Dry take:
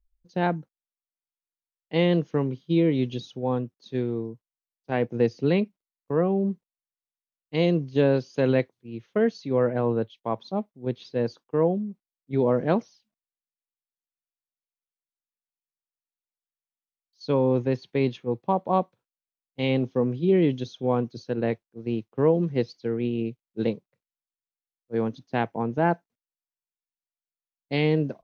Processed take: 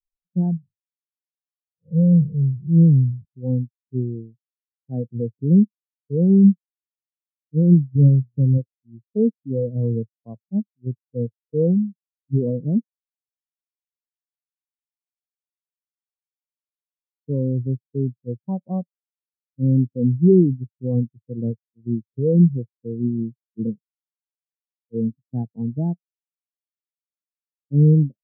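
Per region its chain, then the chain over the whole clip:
0:00.57–0:03.25: spectrum smeared in time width 176 ms + comb filter 1.6 ms, depth 51%
0:07.95–0:08.58: samples sorted by size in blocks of 16 samples + low-shelf EQ 160 Hz +11.5 dB + mains-hum notches 60/120/180/240/300/360/420/480 Hz
whole clip: spectral tilt −4 dB per octave; brickwall limiter −9 dBFS; every bin expanded away from the loudest bin 2.5 to 1; level +4 dB

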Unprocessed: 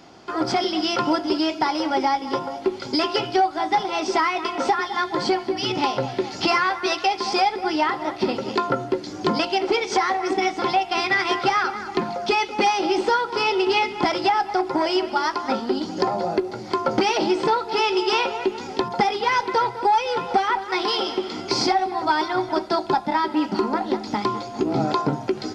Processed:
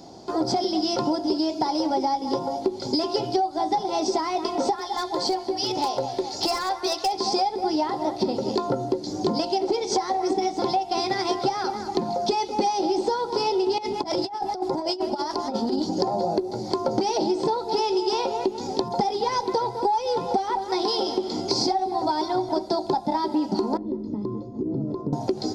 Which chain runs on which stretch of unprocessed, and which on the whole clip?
0:04.76–0:07.13: parametric band 170 Hz −13 dB 1.8 octaves + hard clipping −17 dBFS
0:13.78–0:15.93: two-band tremolo in antiphase 7.5 Hz, depth 50%, crossover 1,100 Hz + compressor whose output falls as the input rises −27 dBFS, ratio −0.5
0:23.77–0:25.13: moving average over 57 samples + downward compressor 2.5 to 1, threshold −29 dBFS
whole clip: flat-topped bell 1,900 Hz −14.5 dB; downward compressor 4 to 1, threshold −25 dBFS; level +4 dB

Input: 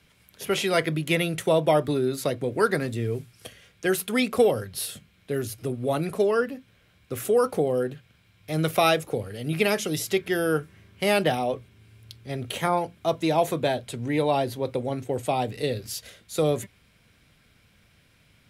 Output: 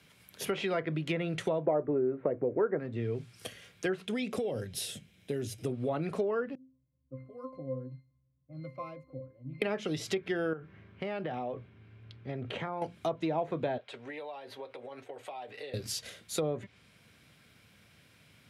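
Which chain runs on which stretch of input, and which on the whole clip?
0:01.66–0:02.79: inverse Chebyshev low-pass filter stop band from 4,500 Hz + parametric band 450 Hz +9.5 dB 1.6 octaves
0:04.05–0:05.66: downward compressor 4 to 1, threshold −24 dBFS + parametric band 1,200 Hz −10.5 dB 0.95 octaves + notch filter 4,400 Hz, Q 8.6
0:06.55–0:09.62: low-pass that shuts in the quiet parts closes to 390 Hz, open at −21 dBFS + resonances in every octave C, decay 0.35 s
0:10.53–0:12.82: low-pass filter 2,100 Hz + downward compressor, threshold −32 dBFS
0:13.78–0:15.74: three-way crossover with the lows and the highs turned down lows −22 dB, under 460 Hz, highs −18 dB, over 3,800 Hz + downward compressor 20 to 1, threshold −37 dBFS + notch comb filter 170 Hz
whole clip: high-pass filter 96 Hz; treble cut that deepens with the level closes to 1,700 Hz, closed at −19.5 dBFS; downward compressor 3 to 1, threshold −31 dBFS

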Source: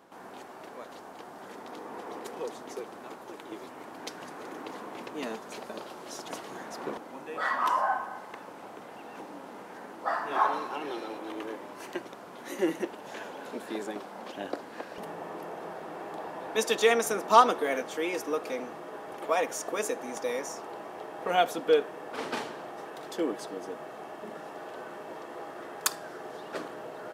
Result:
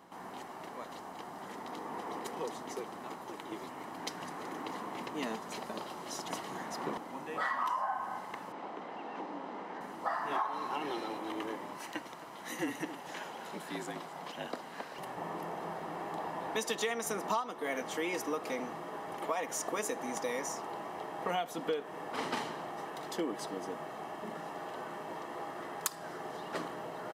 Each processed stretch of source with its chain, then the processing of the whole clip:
0:08.52–0:09.81: band-pass filter 330–4,200 Hz + low-shelf EQ 430 Hz +9 dB
0:11.77–0:15.17: high-pass filter 590 Hz 6 dB per octave + frequency shifter −44 Hz + single-tap delay 265 ms −16 dB
whole clip: parametric band 170 Hz +4 dB 0.24 octaves; comb filter 1 ms, depth 32%; downward compressor 10 to 1, threshold −30 dBFS

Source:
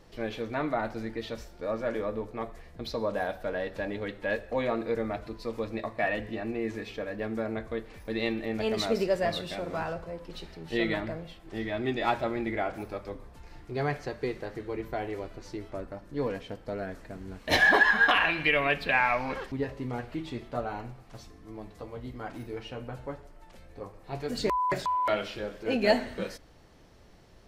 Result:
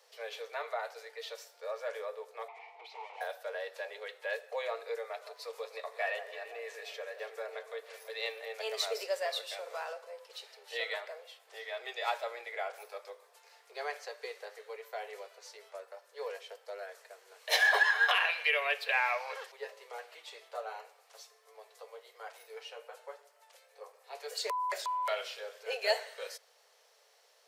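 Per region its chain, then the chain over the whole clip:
0:02.48–0:03.21: parametric band 690 Hz +10.5 dB 0.44 octaves + mid-hump overdrive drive 35 dB, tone 2,300 Hz, clips at −15 dBFS + formant filter u
0:05.03–0:08.53: upward compression, threshold −36 dBFS + delay that swaps between a low-pass and a high-pass 166 ms, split 1,500 Hz, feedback 71%, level −10.5 dB
whole clip: Butterworth high-pass 430 Hz 96 dB per octave; high-shelf EQ 3,300 Hz +11 dB; level −7 dB

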